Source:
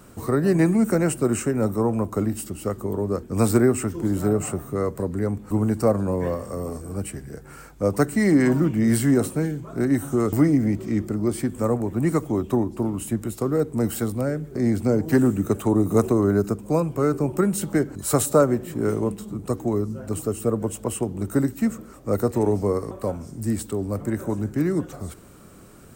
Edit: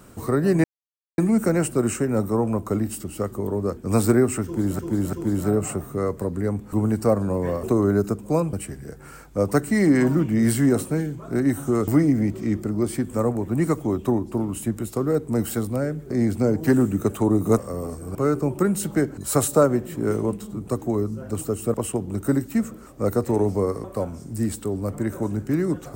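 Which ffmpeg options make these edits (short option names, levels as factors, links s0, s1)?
-filter_complex "[0:a]asplit=9[s0][s1][s2][s3][s4][s5][s6][s7][s8];[s0]atrim=end=0.64,asetpts=PTS-STARTPTS,afade=t=out:st=0.636:d=0.004:c=hsin,apad=pad_dur=0.54[s9];[s1]atrim=start=0.64:end=4.252,asetpts=PTS-STARTPTS,afade=t=in:d=0.004:c=hsin[s10];[s2]atrim=start=3.908:end=4.252[s11];[s3]atrim=start=3.908:end=6.412[s12];[s4]atrim=start=16.028:end=16.932[s13];[s5]atrim=start=6.978:end=16.032[s14];[s6]atrim=start=6.408:end=6.982[s15];[s7]atrim=start=16.928:end=20.522[s16];[s8]atrim=start=20.808[s17];[s9][s10]concat=n=2:v=0:a=1[s18];[s18][s11]acrossfade=d=0.004:c1=hsin:c2=hsin[s19];[s19][s12]acrossfade=d=0.004:c1=hsin:c2=hsin[s20];[s20][s13]acrossfade=d=0.004:c1=hsin:c2=hsin[s21];[s21][s14]acrossfade=d=0.004:c1=hsin:c2=hsin[s22];[s22][s15]acrossfade=d=0.004:c1=hsin:c2=hsin[s23];[s23][s16]acrossfade=d=0.004:c1=hsin:c2=hsin[s24];[s24][s17]acrossfade=d=0.004:c1=hsin:c2=hsin"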